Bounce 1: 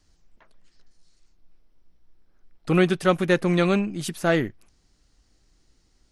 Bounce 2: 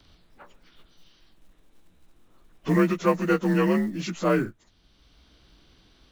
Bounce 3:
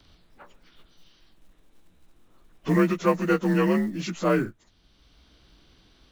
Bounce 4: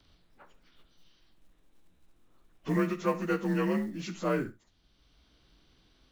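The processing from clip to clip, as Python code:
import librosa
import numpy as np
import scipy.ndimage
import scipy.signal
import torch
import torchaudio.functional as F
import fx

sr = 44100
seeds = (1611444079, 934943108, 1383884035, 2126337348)

y1 = fx.partial_stretch(x, sr, pct=88)
y1 = fx.quant_float(y1, sr, bits=4)
y1 = fx.band_squash(y1, sr, depth_pct=40)
y2 = y1
y3 = fx.room_early_taps(y2, sr, ms=(39, 70), db=(-17.5, -15.5))
y3 = y3 * 10.0 ** (-7.0 / 20.0)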